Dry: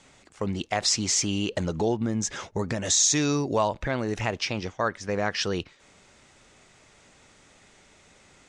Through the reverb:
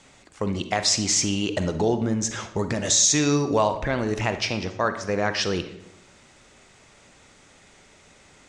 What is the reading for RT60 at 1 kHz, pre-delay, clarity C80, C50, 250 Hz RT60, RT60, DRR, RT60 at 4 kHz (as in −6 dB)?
0.70 s, 38 ms, 13.5 dB, 10.5 dB, 0.95 s, 0.75 s, 9.0 dB, 0.55 s